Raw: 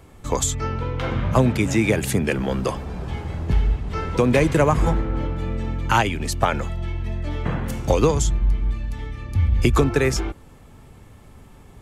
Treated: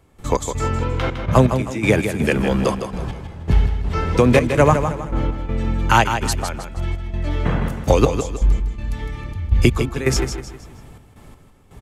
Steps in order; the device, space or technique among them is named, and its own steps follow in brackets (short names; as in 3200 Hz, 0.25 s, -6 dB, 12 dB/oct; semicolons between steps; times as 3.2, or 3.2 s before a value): trance gate with a delay (step gate ".x.xxx.x." 82 bpm -12 dB; feedback echo 0.158 s, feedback 37%, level -8 dB); gain +4 dB